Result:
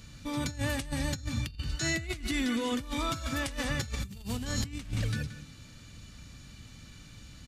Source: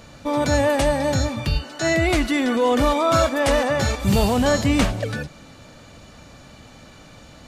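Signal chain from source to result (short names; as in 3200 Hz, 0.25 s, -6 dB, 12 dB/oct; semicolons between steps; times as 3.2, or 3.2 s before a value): passive tone stack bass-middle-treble 6-0-2; outdoor echo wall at 30 m, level -12 dB; negative-ratio compressor -40 dBFS, ratio -0.5; gain +8 dB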